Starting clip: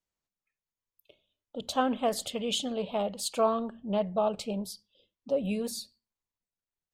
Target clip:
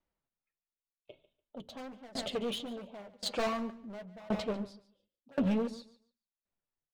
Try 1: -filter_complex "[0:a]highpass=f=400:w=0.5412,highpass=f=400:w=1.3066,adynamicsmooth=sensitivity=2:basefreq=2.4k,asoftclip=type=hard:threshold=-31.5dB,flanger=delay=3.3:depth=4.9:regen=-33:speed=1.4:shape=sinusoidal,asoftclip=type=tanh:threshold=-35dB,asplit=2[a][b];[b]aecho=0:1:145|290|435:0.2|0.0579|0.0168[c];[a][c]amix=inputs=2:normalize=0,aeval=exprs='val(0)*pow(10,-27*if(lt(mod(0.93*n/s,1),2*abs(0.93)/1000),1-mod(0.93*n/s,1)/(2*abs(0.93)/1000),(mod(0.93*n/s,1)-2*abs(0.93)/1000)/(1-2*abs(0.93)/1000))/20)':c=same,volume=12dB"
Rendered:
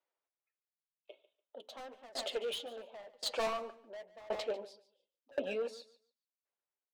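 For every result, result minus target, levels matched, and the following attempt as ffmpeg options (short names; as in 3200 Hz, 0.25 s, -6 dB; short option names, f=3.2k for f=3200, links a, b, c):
soft clip: distortion +14 dB; 500 Hz band +3.0 dB
-filter_complex "[0:a]highpass=f=400:w=0.5412,highpass=f=400:w=1.3066,adynamicsmooth=sensitivity=2:basefreq=2.4k,asoftclip=type=hard:threshold=-31.5dB,flanger=delay=3.3:depth=4.9:regen=-33:speed=1.4:shape=sinusoidal,asoftclip=type=tanh:threshold=-27dB,asplit=2[a][b];[b]aecho=0:1:145|290|435:0.2|0.0579|0.0168[c];[a][c]amix=inputs=2:normalize=0,aeval=exprs='val(0)*pow(10,-27*if(lt(mod(0.93*n/s,1),2*abs(0.93)/1000),1-mod(0.93*n/s,1)/(2*abs(0.93)/1000),(mod(0.93*n/s,1)-2*abs(0.93)/1000)/(1-2*abs(0.93)/1000))/20)':c=same,volume=12dB"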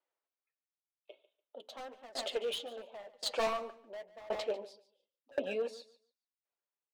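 500 Hz band +3.0 dB
-filter_complex "[0:a]adynamicsmooth=sensitivity=2:basefreq=2.4k,asoftclip=type=hard:threshold=-31.5dB,flanger=delay=3.3:depth=4.9:regen=-33:speed=1.4:shape=sinusoidal,asoftclip=type=tanh:threshold=-27dB,asplit=2[a][b];[b]aecho=0:1:145|290|435:0.2|0.0579|0.0168[c];[a][c]amix=inputs=2:normalize=0,aeval=exprs='val(0)*pow(10,-27*if(lt(mod(0.93*n/s,1),2*abs(0.93)/1000),1-mod(0.93*n/s,1)/(2*abs(0.93)/1000),(mod(0.93*n/s,1)-2*abs(0.93)/1000)/(1-2*abs(0.93)/1000))/20)':c=same,volume=12dB"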